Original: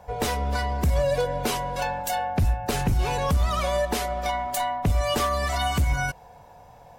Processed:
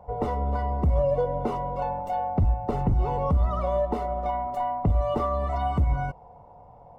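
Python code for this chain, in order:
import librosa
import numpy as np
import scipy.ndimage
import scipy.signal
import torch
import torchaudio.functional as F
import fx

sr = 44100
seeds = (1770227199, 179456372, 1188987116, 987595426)

y = scipy.signal.savgol_filter(x, 65, 4, mode='constant')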